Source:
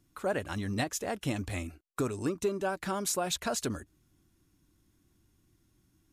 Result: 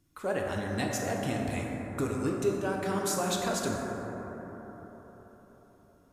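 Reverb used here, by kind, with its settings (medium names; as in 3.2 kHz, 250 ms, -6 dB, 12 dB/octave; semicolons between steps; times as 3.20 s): plate-style reverb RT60 4.6 s, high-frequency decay 0.25×, DRR -1.5 dB; trim -2 dB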